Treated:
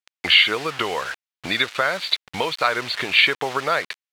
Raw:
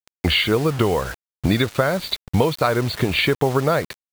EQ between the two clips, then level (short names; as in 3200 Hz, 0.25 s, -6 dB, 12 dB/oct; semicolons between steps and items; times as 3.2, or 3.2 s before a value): band-pass 2500 Hz, Q 0.85; +6.0 dB